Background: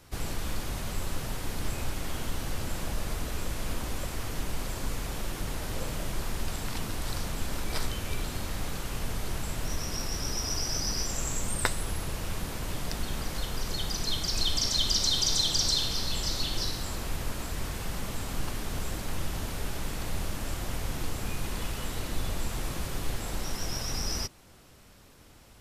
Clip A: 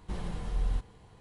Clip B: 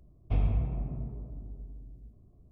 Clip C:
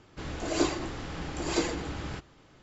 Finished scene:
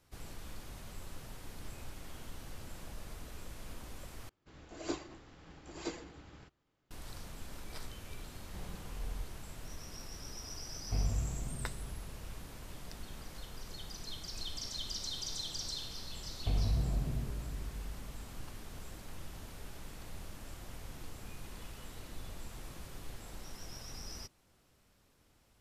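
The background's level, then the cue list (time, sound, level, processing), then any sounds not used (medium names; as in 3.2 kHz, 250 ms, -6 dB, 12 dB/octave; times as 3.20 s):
background -14 dB
4.29 s: replace with C -10.5 dB + upward expansion, over -45 dBFS
8.45 s: add A -11 dB
10.61 s: add B -6 dB
16.16 s: add B + peak limiter -24 dBFS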